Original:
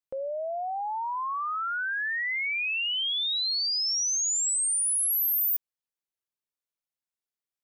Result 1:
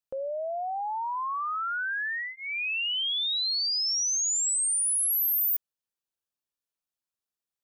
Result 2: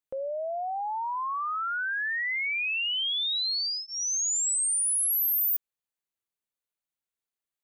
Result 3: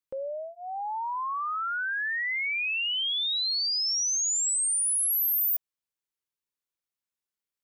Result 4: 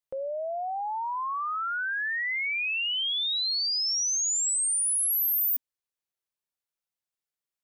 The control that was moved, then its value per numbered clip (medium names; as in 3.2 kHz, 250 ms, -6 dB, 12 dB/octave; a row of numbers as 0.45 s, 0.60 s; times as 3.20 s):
band-stop, frequency: 2.1 kHz, 5.3 kHz, 690 Hz, 260 Hz